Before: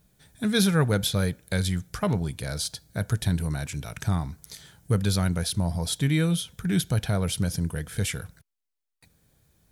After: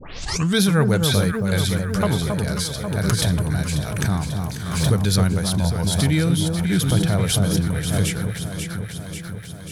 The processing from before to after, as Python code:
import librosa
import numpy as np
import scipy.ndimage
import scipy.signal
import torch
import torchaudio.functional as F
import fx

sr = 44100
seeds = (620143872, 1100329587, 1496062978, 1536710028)

y = fx.tape_start_head(x, sr, length_s=0.58)
y = fx.echo_alternate(y, sr, ms=270, hz=1200.0, feedback_pct=80, wet_db=-4.5)
y = fx.pre_swell(y, sr, db_per_s=48.0)
y = y * 10.0 ** (3.5 / 20.0)